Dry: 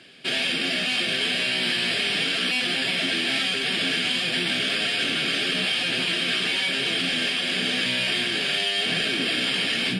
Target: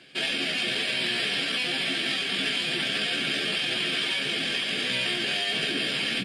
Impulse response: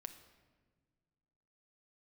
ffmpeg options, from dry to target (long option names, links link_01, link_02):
-filter_complex "[0:a]atempo=1.6,asplit=2[link_01][link_02];[1:a]atrim=start_sample=2205,adelay=14[link_03];[link_02][link_03]afir=irnorm=-1:irlink=0,volume=0dB[link_04];[link_01][link_04]amix=inputs=2:normalize=0,volume=-3.5dB"